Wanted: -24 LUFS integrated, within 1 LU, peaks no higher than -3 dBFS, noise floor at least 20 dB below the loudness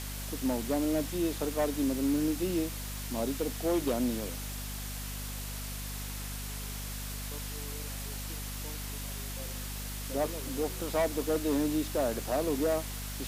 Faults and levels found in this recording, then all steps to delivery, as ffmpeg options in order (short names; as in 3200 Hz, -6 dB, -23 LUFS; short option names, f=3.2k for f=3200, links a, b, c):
hum 50 Hz; harmonics up to 250 Hz; hum level -38 dBFS; noise floor -39 dBFS; noise floor target -53 dBFS; loudness -33.0 LUFS; peak -20.0 dBFS; loudness target -24.0 LUFS
-> -af "bandreject=f=50:t=h:w=6,bandreject=f=100:t=h:w=6,bandreject=f=150:t=h:w=6,bandreject=f=200:t=h:w=6,bandreject=f=250:t=h:w=6"
-af "afftdn=nr=14:nf=-39"
-af "volume=9dB"